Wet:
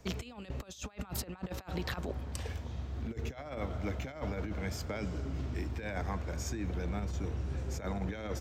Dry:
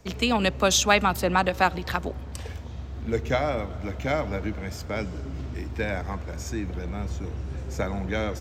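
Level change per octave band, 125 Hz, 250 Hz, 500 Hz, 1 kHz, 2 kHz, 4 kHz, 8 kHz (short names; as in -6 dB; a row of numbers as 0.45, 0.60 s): -5.5, -9.5, -13.5, -17.5, -16.0, -16.5, -15.0 dB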